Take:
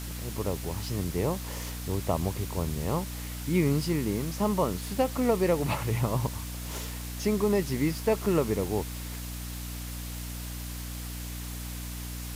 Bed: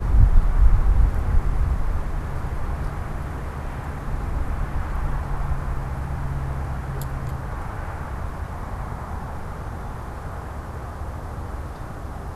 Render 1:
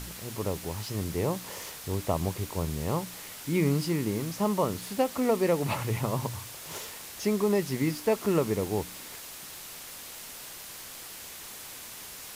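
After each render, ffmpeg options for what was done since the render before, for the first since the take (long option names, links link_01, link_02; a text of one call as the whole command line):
ffmpeg -i in.wav -af "bandreject=frequency=60:width_type=h:width=4,bandreject=frequency=120:width_type=h:width=4,bandreject=frequency=180:width_type=h:width=4,bandreject=frequency=240:width_type=h:width=4,bandreject=frequency=300:width_type=h:width=4" out.wav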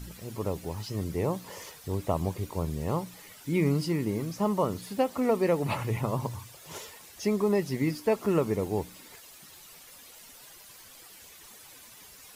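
ffmpeg -i in.wav -af "afftdn=noise_reduction=11:noise_floor=-44" out.wav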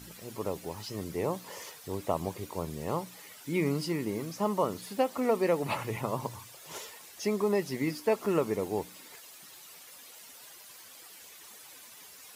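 ffmpeg -i in.wav -af "highpass=frequency=280:poles=1" out.wav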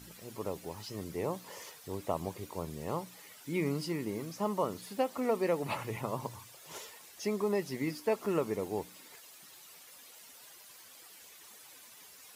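ffmpeg -i in.wav -af "volume=-3.5dB" out.wav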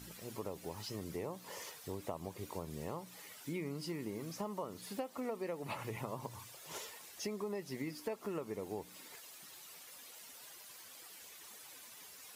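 ffmpeg -i in.wav -af "acompressor=threshold=-38dB:ratio=5" out.wav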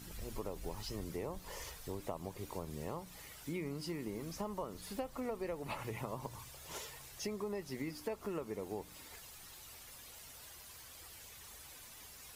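ffmpeg -i in.wav -i bed.wav -filter_complex "[1:a]volume=-33.5dB[link_01];[0:a][link_01]amix=inputs=2:normalize=0" out.wav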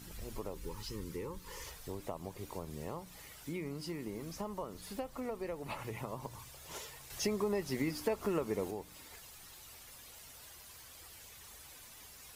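ffmpeg -i in.wav -filter_complex "[0:a]asettb=1/sr,asplit=3[link_01][link_02][link_03];[link_01]atrim=end=0.544[link_04];[link_02]atrim=start=0.54:end=1.66,asetpts=PTS-STARTPTS,afade=type=in:duration=0.004:curve=qsin,afade=type=out:start_time=1.116:duration=0.004:curve=qsin,asuperstop=centerf=680:order=12:qfactor=2.3[link_05];[link_03]atrim=start=1.656[link_06];[link_04][link_05]acrossfade=duration=0.004:curve1=hsin:curve2=qsin[link_07];[link_07][link_06]acrossfade=duration=0.004:curve1=qsin:curve2=hsin,asettb=1/sr,asplit=3[link_08][link_09][link_10];[link_08]atrim=end=7.104[link_11];[link_09]atrim=start=7.1:end=8.71,asetpts=PTS-STARTPTS,afade=type=in:duration=0.004:curve=qsin,afade=type=out:start_time=1.606:duration=0.004:curve=qsin,acontrast=65[link_12];[link_10]atrim=start=8.706[link_13];[link_11][link_12]acrossfade=duration=0.004:curve1=hsin:curve2=qsin[link_14];[link_14][link_13]acrossfade=duration=0.004:curve1=qsin:curve2=hsin" out.wav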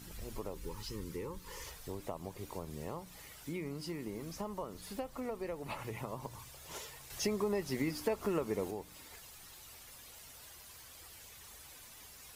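ffmpeg -i in.wav -af anull out.wav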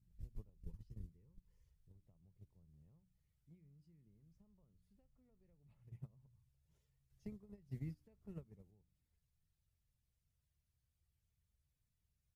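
ffmpeg -i in.wav -af "firequalizer=gain_entry='entry(140,0);entry(280,-18);entry(980,-29);entry(1600,-24)':delay=0.05:min_phase=1,agate=range=-18dB:threshold=-44dB:ratio=16:detection=peak" out.wav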